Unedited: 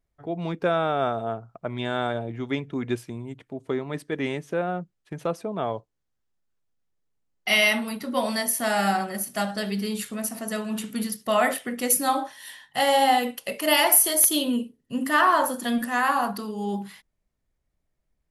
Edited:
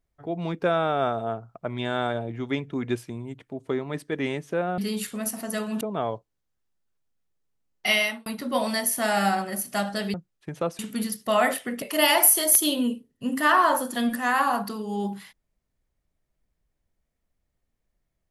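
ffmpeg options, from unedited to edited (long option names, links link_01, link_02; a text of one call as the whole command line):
ffmpeg -i in.wav -filter_complex "[0:a]asplit=7[link_01][link_02][link_03][link_04][link_05][link_06][link_07];[link_01]atrim=end=4.782[link_08];[link_02]atrim=start=9.758:end=10.792[link_09];[link_03]atrim=start=5.428:end=7.88,asetpts=PTS-STARTPTS,afade=type=out:start_time=2.062:duration=0.39[link_10];[link_04]atrim=start=7.88:end=9.762,asetpts=PTS-STARTPTS,afade=type=in:duration=0.004:curve=hsin[link_11];[link_05]atrim=start=4.778:end=5.432[link_12];[link_06]atrim=start=10.788:end=11.822[link_13];[link_07]atrim=start=13.508[link_14];[link_08][link_09]acrossfade=duration=0.004:curve1=hsin:curve2=hsin[link_15];[link_10][link_11]concat=n=2:v=0:a=1[link_16];[link_15][link_16]acrossfade=duration=0.004:curve1=hsin:curve2=hsin[link_17];[link_17][link_12]acrossfade=duration=0.004:curve1=hsin:curve2=hsin[link_18];[link_18][link_13]acrossfade=duration=0.004:curve1=hsin:curve2=hsin[link_19];[link_19][link_14]acrossfade=duration=0.004:curve1=hsin:curve2=hsin" out.wav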